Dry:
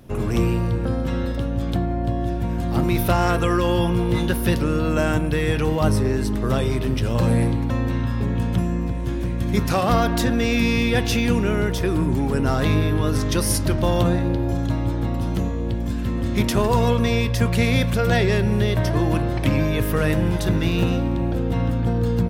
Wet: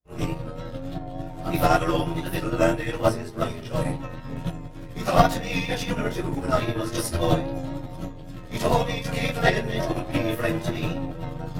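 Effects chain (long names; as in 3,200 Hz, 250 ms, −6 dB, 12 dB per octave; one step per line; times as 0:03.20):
convolution reverb RT60 0.40 s, pre-delay 10 ms, DRR −10 dB
tape wow and flutter 18 cents
mains-hum notches 50/100/150/200 Hz
time stretch by overlap-add 0.52×, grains 23 ms
expander for the loud parts 2.5 to 1, over −33 dBFS
level −3.5 dB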